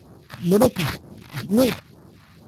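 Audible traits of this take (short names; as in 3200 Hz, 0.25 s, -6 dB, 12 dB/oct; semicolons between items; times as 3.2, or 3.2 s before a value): aliases and images of a low sample rate 3000 Hz, jitter 20%; phasing stages 2, 2.1 Hz, lowest notch 360–2800 Hz; Speex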